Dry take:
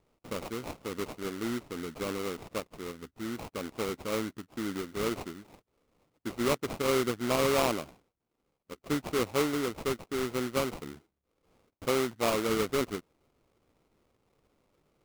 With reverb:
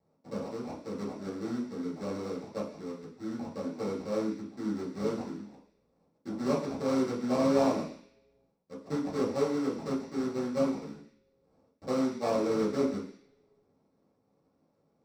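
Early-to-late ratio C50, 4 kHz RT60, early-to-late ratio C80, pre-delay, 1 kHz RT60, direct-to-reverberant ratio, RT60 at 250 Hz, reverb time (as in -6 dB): 7.0 dB, 0.85 s, 10.0 dB, 3 ms, 0.50 s, -7.0 dB, 0.50 s, 0.50 s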